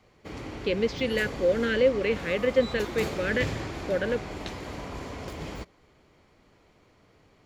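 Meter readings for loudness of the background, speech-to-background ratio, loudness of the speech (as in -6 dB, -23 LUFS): -36.5 LUFS, 9.0 dB, -27.5 LUFS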